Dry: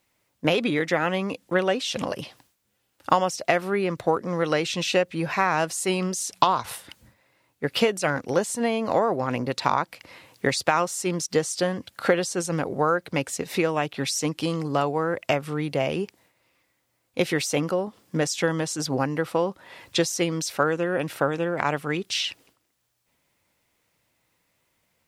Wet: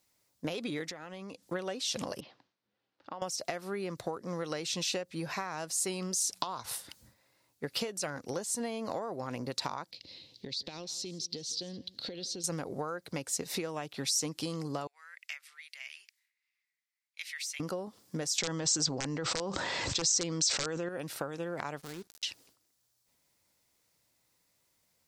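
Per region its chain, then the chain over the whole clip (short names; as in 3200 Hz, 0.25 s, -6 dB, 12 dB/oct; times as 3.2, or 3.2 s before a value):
0.9–1.43 LPF 10000 Hz + compressor 5:1, threshold -35 dBFS
2.2–3.22 BPF 160–3700 Hz + air absorption 150 m + compressor 2:1, threshold -43 dBFS
9.91–12.44 EQ curve 350 Hz 0 dB, 500 Hz -4 dB, 1300 Hz -19 dB, 4000 Hz +9 dB, 8700 Hz -18 dB + compressor 8:1, threshold -32 dBFS + echo 0.165 s -19.5 dB
14.87–17.6 ladder high-pass 1800 Hz, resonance 55% + mismatched tape noise reduction decoder only
18.38–20.89 wrapped overs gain 12 dB + brick-wall FIR low-pass 8300 Hz + fast leveller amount 100%
21.78–22.23 switching dead time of 0.23 ms + compressor 5:1, threshold -32 dBFS
whole clip: compressor, threshold -26 dBFS; resonant high shelf 3600 Hz +6 dB, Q 1.5; gain -6.5 dB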